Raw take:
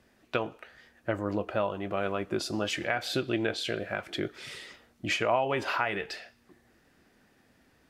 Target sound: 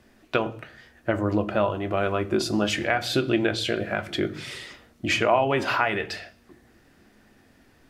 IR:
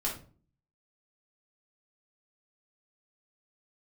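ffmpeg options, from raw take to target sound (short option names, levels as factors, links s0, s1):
-filter_complex "[0:a]asplit=2[s0][s1];[s1]lowshelf=f=390:g=9.5[s2];[1:a]atrim=start_sample=2205[s3];[s2][s3]afir=irnorm=-1:irlink=0,volume=0.168[s4];[s0][s4]amix=inputs=2:normalize=0,volume=1.58"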